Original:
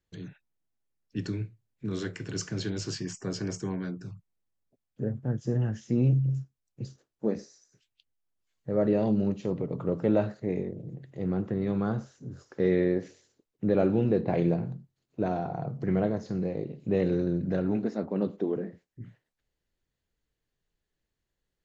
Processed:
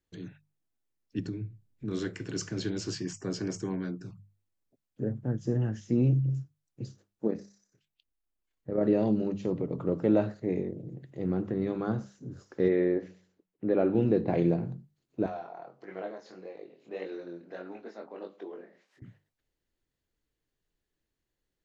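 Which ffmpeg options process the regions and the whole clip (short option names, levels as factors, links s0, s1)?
-filter_complex "[0:a]asettb=1/sr,asplit=3[s0][s1][s2];[s0]atrim=end=1.194[s3];[s1]atrim=start=1.19:end=1.88,asetpts=PTS-STARTPTS,afade=t=in:d=0.004:c=qsin,afade=t=out:st=0.686:d=0.004:c=qsin,lowshelf=f=340:g=11,acompressor=threshold=0.0112:ratio=2:attack=3.2:release=140:knee=1:detection=peak[s4];[s2]atrim=start=1.876[s5];[s3][s4]acrossfade=d=0.004:c1=hsin:c2=qsin[s6];[s6][s5]acrossfade=d=0.004:c1=qsin:c2=hsin,asettb=1/sr,asplit=3[s7][s8][s9];[s7]atrim=end=7.274[s10];[s8]atrim=start=7.27:end=8.83,asetpts=PTS-STARTPTS,afade=t=in:d=0.004:c=qsin,afade=t=out:st=1.556:d=0.004:c=qsin,equalizer=f=6000:w=0.7:g=-6,tremolo=f=33:d=0.462[s11];[s9]atrim=start=8.826[s12];[s10][s11]acrossfade=d=0.004:c1=hsin:c2=qsin[s13];[s13][s12]acrossfade=d=0.004:c1=qsin:c2=hsin,asettb=1/sr,asplit=3[s14][s15][s16];[s14]atrim=end=12.684[s17];[s15]atrim=start=12.68:end=13.95,asetpts=PTS-STARTPTS,afade=t=in:d=0.004:c=qsin,afade=t=out:st=1.266:d=0.004:c=qsin,bass=f=250:g=-6,treble=f=4000:g=-14,bandreject=f=92.01:t=h:w=4,bandreject=f=184.02:t=h:w=4[s18];[s16]atrim=start=13.946[s19];[s17][s18]acrossfade=d=0.004:c1=hsin:c2=qsin[s20];[s20][s19]acrossfade=d=0.004:c1=qsin:c2=hsin,asettb=1/sr,asplit=3[s21][s22][s23];[s21]atrim=end=15.264[s24];[s22]atrim=start=15.26:end=19.02,asetpts=PTS-STARTPTS,afade=t=in:d=0.004:c=qsin,afade=t=out:st=3.756:d=0.004:c=qsin,acompressor=mode=upward:threshold=0.02:ratio=2.5:attack=3.2:release=140:knee=2.83:detection=peak,flanger=delay=20:depth=4.4:speed=1.6,highpass=650,lowpass=5600[s25];[s23]atrim=start=19.016[s26];[s24][s25]acrossfade=d=0.004:c1=hsin:c2=qsin[s27];[s27][s26]acrossfade=d=0.004:c1=qsin:c2=hsin,equalizer=f=310:w=2.5:g=4.5,bandreject=f=50:t=h:w=6,bandreject=f=100:t=h:w=6,bandreject=f=150:t=h:w=6,bandreject=f=200:t=h:w=6,volume=0.841"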